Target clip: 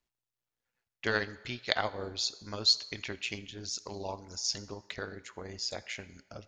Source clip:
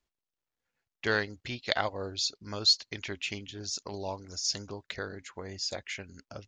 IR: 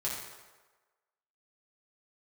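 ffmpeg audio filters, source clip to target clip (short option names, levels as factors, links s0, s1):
-filter_complex "[0:a]tremolo=f=120:d=0.571,asplit=2[s0][s1];[1:a]atrim=start_sample=2205,lowshelf=f=330:g=-10[s2];[s1][s2]afir=irnorm=-1:irlink=0,volume=0.15[s3];[s0][s3]amix=inputs=2:normalize=0"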